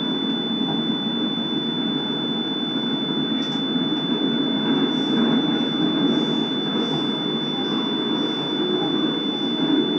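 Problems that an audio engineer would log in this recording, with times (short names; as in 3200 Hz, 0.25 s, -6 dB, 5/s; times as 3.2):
tone 3500 Hz -26 dBFS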